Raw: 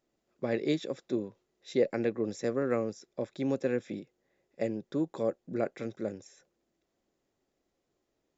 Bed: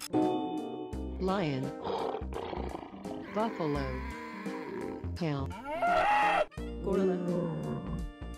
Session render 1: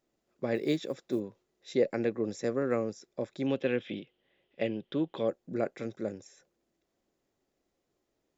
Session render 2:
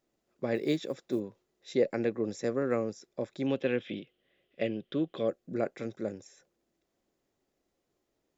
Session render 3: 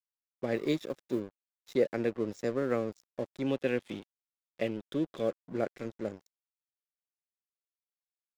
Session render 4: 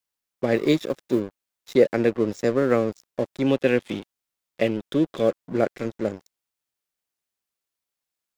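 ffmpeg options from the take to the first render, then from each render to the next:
-filter_complex "[0:a]asplit=3[a][b][c];[a]afade=t=out:st=0.54:d=0.02[d];[b]acrusher=bits=9:mode=log:mix=0:aa=0.000001,afade=t=in:st=0.54:d=0.02,afade=t=out:st=1.19:d=0.02[e];[c]afade=t=in:st=1.19:d=0.02[f];[d][e][f]amix=inputs=3:normalize=0,asettb=1/sr,asplit=3[g][h][i];[g]atrim=end=3.464[j];[h]atrim=start=3.46:end=5.28,asetpts=PTS-STARTPTS,afade=t=in:d=0.004:c=qsin,afade=t=out:st=1.816:d=0.004:c=qsin,lowpass=f=3.1k:t=q:w=8.7[k];[i]atrim=start=5.276[l];[j][k]acrossfade=d=0.004:c1=hsin:c2=qsin[m];[m][l]acrossfade=d=0.004:c1=qsin:c2=hsin"
-filter_complex "[0:a]asettb=1/sr,asplit=3[a][b][c];[a]atrim=end=3.844[d];[b]atrim=start=3.84:end=5.55,asetpts=PTS-STARTPTS,afade=t=in:d=0.004:c=qsin,afade=t=out:st=1.706:d=0.004:c=qsin,asuperstop=centerf=890:order=4:qfactor=3.9[e];[c]atrim=start=5.546[f];[d][e]acrossfade=d=0.004:c1=hsin:c2=qsin[g];[g][f]acrossfade=d=0.004:c1=qsin:c2=hsin"
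-af "aeval=exprs='sgn(val(0))*max(abs(val(0))-0.00447,0)':c=same"
-af "volume=10dB"

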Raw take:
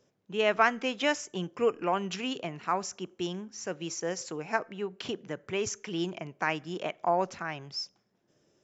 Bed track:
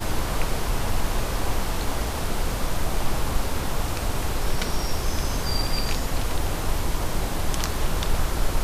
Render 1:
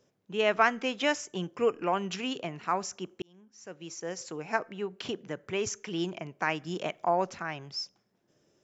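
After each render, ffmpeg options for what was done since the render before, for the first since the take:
-filter_complex "[0:a]asettb=1/sr,asplit=3[a][b][c];[a]atrim=end=6.644[d];[b]atrim=start=6.64:end=7.04,asetpts=PTS-STARTPTS,afade=t=in:d=0.004:c=qsin,afade=t=out:st=0.396:d=0.004:c=qsin,bass=f=250:g=4,treble=f=4k:g=5[e];[c]atrim=start=7.036[f];[d][e]acrossfade=d=0.004:c1=hsin:c2=qsin[g];[g][f]acrossfade=d=0.004:c1=qsin:c2=hsin,asplit=2[h][i];[h]atrim=end=3.22,asetpts=PTS-STARTPTS,afade=t=out:st=3.216:d=0.004:c=hsin[j];[i]atrim=start=3.22,asetpts=PTS-STARTPTS,afade=t=in:d=1.34[k];[j][k]concat=n=2:v=0:a=1"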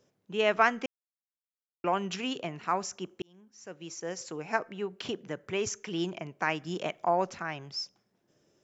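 -filter_complex "[0:a]asplit=3[a][b][c];[a]atrim=end=0.86,asetpts=PTS-STARTPTS,afade=t=out:st=0.856:d=0.004:c=hsin[d];[b]atrim=start=0.86:end=1.84,asetpts=PTS-STARTPTS,volume=0[e];[c]atrim=start=1.84,asetpts=PTS-STARTPTS,afade=t=in:d=0.004:c=hsin[f];[d][e][f]concat=n=3:v=0:a=1"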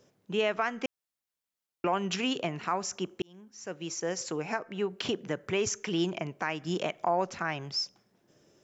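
-filter_complex "[0:a]asplit=2[a][b];[b]acompressor=threshold=-35dB:ratio=6,volume=-1dB[c];[a][c]amix=inputs=2:normalize=0,alimiter=limit=-17dB:level=0:latency=1:release=225"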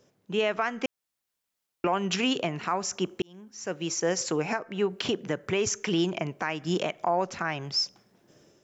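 -af "dynaudnorm=f=290:g=3:m=6dB,alimiter=limit=-15.5dB:level=0:latency=1:release=448"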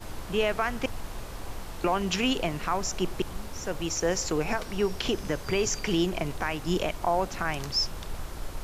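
-filter_complex "[1:a]volume=-13dB[a];[0:a][a]amix=inputs=2:normalize=0"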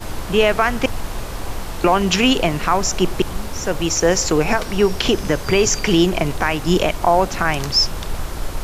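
-af "volume=11dB"

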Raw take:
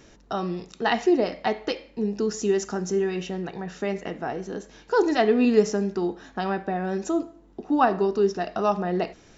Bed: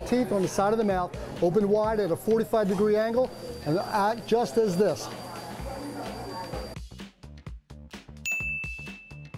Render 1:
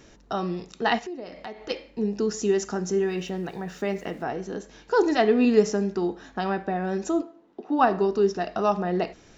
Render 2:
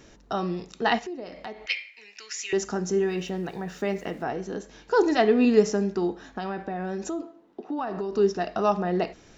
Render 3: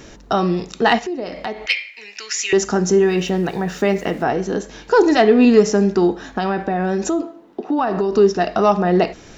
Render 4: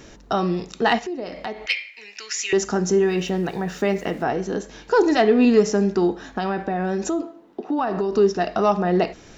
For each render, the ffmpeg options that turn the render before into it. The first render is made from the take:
-filter_complex "[0:a]asplit=3[a][b][c];[a]afade=t=out:st=0.98:d=0.02[d];[b]acompressor=threshold=-38dB:ratio=3:attack=3.2:release=140:knee=1:detection=peak,afade=t=in:st=0.98:d=0.02,afade=t=out:st=1.69:d=0.02[e];[c]afade=t=in:st=1.69:d=0.02[f];[d][e][f]amix=inputs=3:normalize=0,asettb=1/sr,asplit=3[g][h][i];[g]atrim=end=3.014[j];[h]atrim=start=3.01:end=4.23,asetpts=PTS-STARTPTS,afade=t=in:d=0.004:c=qsin,afade=t=out:st=1.216:d=0.004:c=qsin,aeval=exprs='val(0)*gte(abs(val(0)),0.00251)':c=same[k];[i]atrim=start=4.226[l];[j][k]acrossfade=d=0.004:c1=hsin:c2=qsin[m];[m][l]acrossfade=d=0.004:c1=qsin:c2=hsin,asplit=3[n][o][p];[n]afade=t=out:st=7.21:d=0.02[q];[o]highpass=280,lowpass=4.4k,afade=t=in:st=7.21:d=0.02,afade=t=out:st=7.78:d=0.02[r];[p]afade=t=in:st=7.78:d=0.02[s];[q][r][s]amix=inputs=3:normalize=0"
-filter_complex "[0:a]asettb=1/sr,asplit=3[a][b][c];[a]atrim=end=1.664[d];[b]atrim=start=1.66:end=2.53,asetpts=PTS-STARTPTS,afade=t=in:d=0.004:c=qsin,afade=t=out:st=0.866:d=0.004:c=qsin,highpass=f=2.2k:t=q:w=6.9[e];[c]atrim=start=2.526[f];[d][e]acrossfade=d=0.004:c1=hsin:c2=qsin[g];[g][f]acrossfade=d=0.004:c1=qsin:c2=hsin,asettb=1/sr,asplit=3[h][i][j];[h]atrim=end=6.254[k];[i]atrim=start=6.25:end=8.13,asetpts=PTS-STARTPTS,afade=t=in:d=0.004:c=qsin,afade=t=out:st=1.876:d=0.004:c=qsin,acompressor=threshold=-27dB:ratio=6:attack=3.2:release=140:knee=1:detection=peak[l];[j]atrim=start=8.126[m];[k][l]acrossfade=d=0.004:c1=hsin:c2=qsin[n];[n][m]acrossfade=d=0.004:c1=qsin:c2=hsin"
-filter_complex "[0:a]asplit=2[a][b];[b]alimiter=limit=-18.5dB:level=0:latency=1:release=349,volume=1dB[c];[a][c]amix=inputs=2:normalize=0,acontrast=24"
-af "volume=-4dB"

